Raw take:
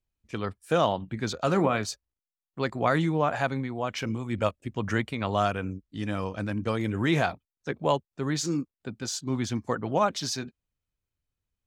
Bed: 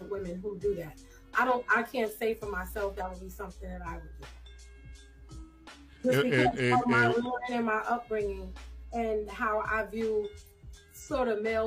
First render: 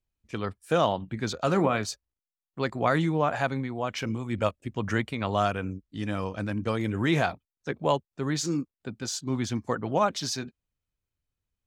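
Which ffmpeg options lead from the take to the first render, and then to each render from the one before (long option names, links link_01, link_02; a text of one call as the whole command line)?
ffmpeg -i in.wav -af anull out.wav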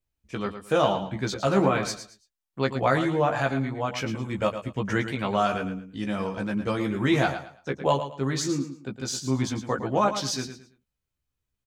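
ffmpeg -i in.wav -filter_complex "[0:a]asplit=2[link_01][link_02];[link_02]adelay=15,volume=-4dB[link_03];[link_01][link_03]amix=inputs=2:normalize=0,asplit=2[link_04][link_05];[link_05]aecho=0:1:111|222|333:0.316|0.0854|0.0231[link_06];[link_04][link_06]amix=inputs=2:normalize=0" out.wav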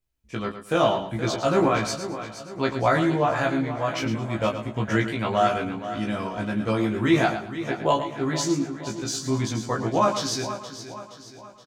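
ffmpeg -i in.wav -filter_complex "[0:a]asplit=2[link_01][link_02];[link_02]adelay=18,volume=-3dB[link_03];[link_01][link_03]amix=inputs=2:normalize=0,aecho=1:1:472|944|1416|1888|2360:0.251|0.121|0.0579|0.0278|0.0133" out.wav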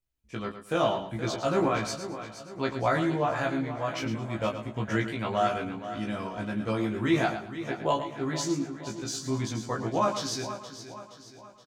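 ffmpeg -i in.wav -af "volume=-5dB" out.wav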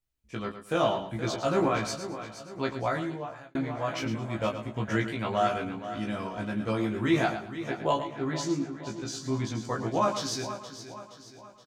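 ffmpeg -i in.wav -filter_complex "[0:a]asettb=1/sr,asplit=3[link_01][link_02][link_03];[link_01]atrim=end=8.074[link_04];[link_02]atrim=start=8.07:end=9.65,asetpts=PTS-STARTPTS,afade=type=in:duration=0.004:curve=qsin,afade=type=out:start_time=1.576:duration=0.004:curve=qsin,highshelf=frequency=7700:gain=-10.5[link_05];[link_03]atrim=start=9.646[link_06];[link_04][link_05]acrossfade=duration=0.004:curve1=hsin:curve2=qsin[link_07];[link_07][link_06]acrossfade=duration=0.004:curve1=qsin:curve2=hsin,asplit=2[link_08][link_09];[link_08]atrim=end=3.55,asetpts=PTS-STARTPTS,afade=type=out:start_time=2.56:duration=0.99[link_10];[link_09]atrim=start=3.55,asetpts=PTS-STARTPTS,afade=type=in:duration=0.004:curve=hsin[link_11];[link_10][link_11]concat=n=2:v=0:a=1" out.wav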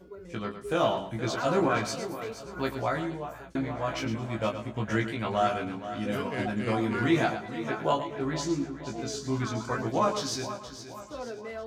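ffmpeg -i in.wav -i bed.wav -filter_complex "[1:a]volume=-9dB[link_01];[0:a][link_01]amix=inputs=2:normalize=0" out.wav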